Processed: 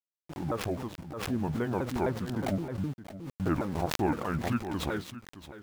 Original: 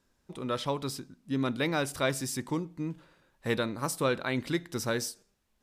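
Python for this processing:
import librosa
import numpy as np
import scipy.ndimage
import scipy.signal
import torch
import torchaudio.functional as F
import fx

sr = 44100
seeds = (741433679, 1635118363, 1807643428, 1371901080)

y = fx.pitch_ramps(x, sr, semitones=-9.5, every_ms=258)
y = fx.filter_sweep_lowpass(y, sr, from_hz=1100.0, to_hz=2200.0, start_s=3.43, end_s=5.12, q=0.86)
y = np.where(np.abs(y) >= 10.0 ** (-45.0 / 20.0), y, 0.0)
y = fx.rider(y, sr, range_db=10, speed_s=2.0)
y = y + 10.0 ** (-14.5 / 20.0) * np.pad(y, (int(619 * sr / 1000.0), 0))[:len(y)]
y = fx.pre_swell(y, sr, db_per_s=56.0)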